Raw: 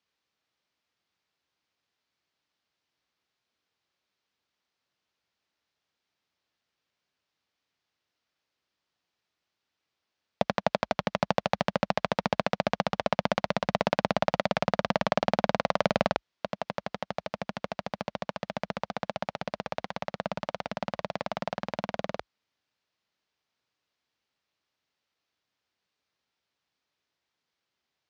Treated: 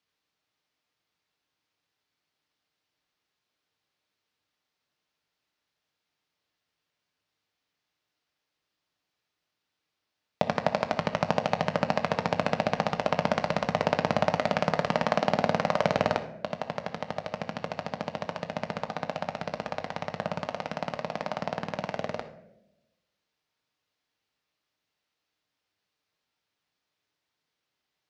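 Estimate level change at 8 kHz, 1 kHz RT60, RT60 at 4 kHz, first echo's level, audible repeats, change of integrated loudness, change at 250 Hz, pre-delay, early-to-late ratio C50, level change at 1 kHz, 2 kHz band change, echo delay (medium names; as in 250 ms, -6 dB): +0.5 dB, 0.65 s, 0.50 s, no echo, no echo, +1.0 dB, +0.5 dB, 7 ms, 11.0 dB, +1.0 dB, +0.5 dB, no echo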